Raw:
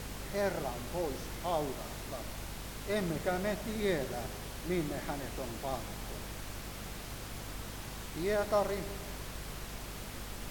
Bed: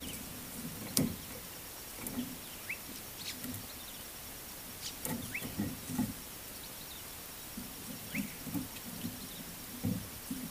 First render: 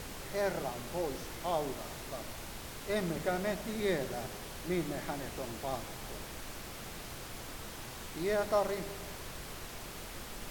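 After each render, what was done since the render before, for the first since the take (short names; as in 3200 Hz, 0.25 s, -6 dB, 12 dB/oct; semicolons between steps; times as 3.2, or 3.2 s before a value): notches 50/100/150/200/250/300 Hz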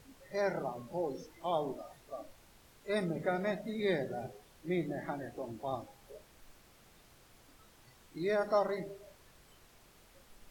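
noise print and reduce 17 dB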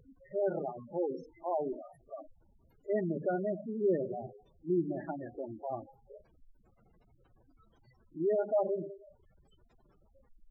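spectral gate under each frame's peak -10 dB strong; dynamic EQ 360 Hz, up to +5 dB, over -45 dBFS, Q 1.4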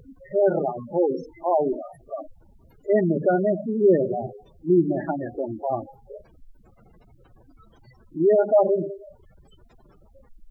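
gain +12 dB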